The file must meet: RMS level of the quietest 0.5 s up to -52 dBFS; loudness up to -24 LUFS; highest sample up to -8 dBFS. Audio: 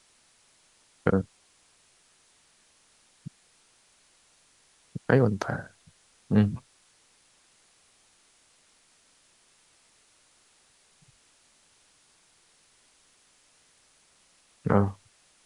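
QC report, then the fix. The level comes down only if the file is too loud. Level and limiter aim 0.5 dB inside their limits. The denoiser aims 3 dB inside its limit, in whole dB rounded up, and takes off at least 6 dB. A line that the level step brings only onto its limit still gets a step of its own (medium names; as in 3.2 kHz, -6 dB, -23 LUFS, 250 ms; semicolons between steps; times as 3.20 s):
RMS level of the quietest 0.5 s -63 dBFS: pass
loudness -27.5 LUFS: pass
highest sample -5.5 dBFS: fail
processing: peak limiter -8.5 dBFS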